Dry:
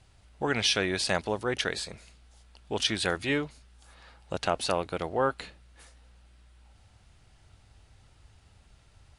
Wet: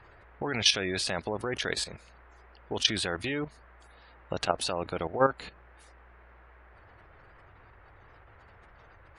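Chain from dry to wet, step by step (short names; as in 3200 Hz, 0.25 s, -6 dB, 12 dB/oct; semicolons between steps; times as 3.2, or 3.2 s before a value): spectral gate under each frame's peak -25 dB strong; band noise 320–1900 Hz -58 dBFS; level quantiser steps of 12 dB; gain +5 dB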